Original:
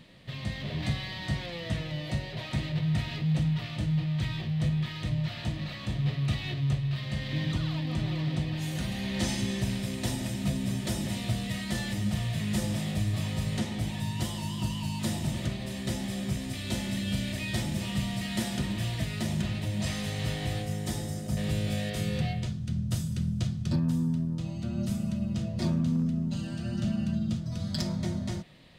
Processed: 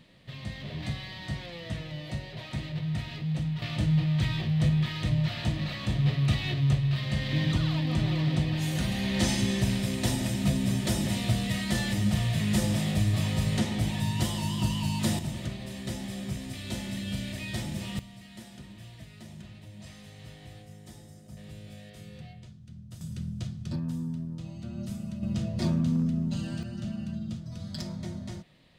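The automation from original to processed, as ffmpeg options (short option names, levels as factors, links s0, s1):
-af "asetnsamples=n=441:p=0,asendcmd='3.62 volume volume 3.5dB;15.19 volume volume -3dB;17.99 volume volume -15.5dB;23.01 volume volume -5.5dB;25.23 volume volume 1dB;26.63 volume volume -5.5dB',volume=0.668"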